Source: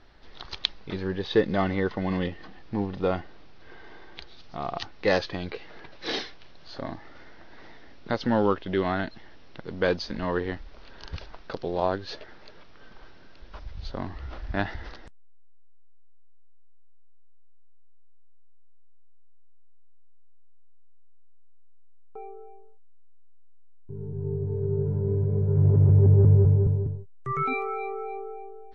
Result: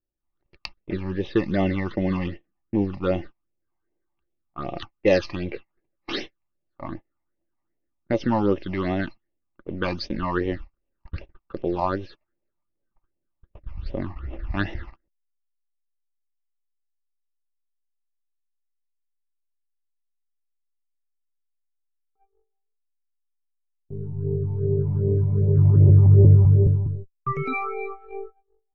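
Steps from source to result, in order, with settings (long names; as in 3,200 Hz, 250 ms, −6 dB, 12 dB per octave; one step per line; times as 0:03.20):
low-pass that shuts in the quiet parts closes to 1,000 Hz, open at −21.5 dBFS
hollow resonant body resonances 340/560/1,200/2,700 Hz, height 9 dB, ringing for 55 ms
all-pass phaser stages 8, 2.6 Hz, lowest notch 440–1,400 Hz
noise gate −36 dBFS, range −37 dB
level +3.5 dB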